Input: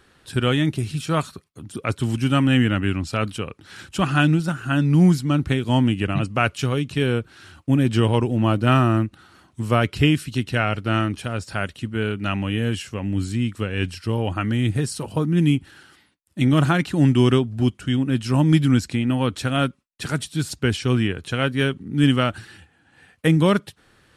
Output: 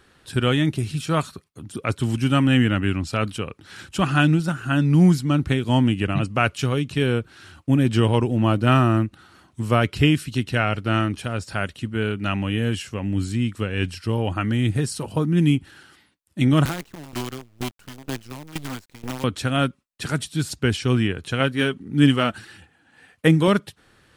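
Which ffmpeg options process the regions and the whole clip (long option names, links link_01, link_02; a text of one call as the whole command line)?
ffmpeg -i in.wav -filter_complex "[0:a]asettb=1/sr,asplit=3[link_01][link_02][link_03];[link_01]atrim=end=16.654[link_04];[link_02]atrim=start=16.65:end=19.24,asetpts=PTS-STARTPTS,afade=type=in:duration=0.004:curve=qsin,afade=type=out:start_time=2.586:duration=0.004:curve=qsin,acrossover=split=290|710|1600[link_05][link_06][link_07][link_08];[link_05]acompressor=threshold=-31dB:ratio=3[link_09];[link_06]acompressor=threshold=-34dB:ratio=3[link_10];[link_07]acompressor=threshold=-37dB:ratio=3[link_11];[link_08]acompressor=threshold=-41dB:ratio=3[link_12];[link_09][link_10][link_11][link_12]amix=inputs=4:normalize=0,acrusher=bits=5:dc=4:mix=0:aa=0.000001,aeval=exprs='val(0)*pow(10,-18*if(lt(mod(2.1*n/s,1),2*abs(2.1)/1000),1-mod(2.1*n/s,1)/(2*abs(2.1)/1000),(mod(2.1*n/s,1)-2*abs(2.1)/1000)/(1-2*abs(2.1)/1000))/20)':channel_layout=same[link_13];[link_03]atrim=start=19.236[link_14];[link_04][link_13]acrossfade=duration=0.004:curve1=hsin:curve2=qsin[link_15];[link_15][link_14]acrossfade=duration=0.004:curve1=qsin:curve2=hsin,asettb=1/sr,asplit=3[link_16][link_17][link_18];[link_16]atrim=end=21.404[link_19];[link_17]atrim=start=21.4:end=23.48,asetpts=PTS-STARTPTS,afade=type=in:duration=0.004:curve=qsin,afade=type=out:start_time=2.076:duration=0.004:curve=qsin,aphaser=in_gain=1:out_gain=1:delay=4.7:decay=0.32:speed=1.6:type=sinusoidal,lowshelf=frequency=92:gain=-9[link_20];[link_18]atrim=start=23.476[link_21];[link_19][link_20]acrossfade=duration=0.004:curve1=hsin:curve2=qsin[link_22];[link_22][link_21]acrossfade=duration=0.004:curve1=qsin:curve2=hsin" out.wav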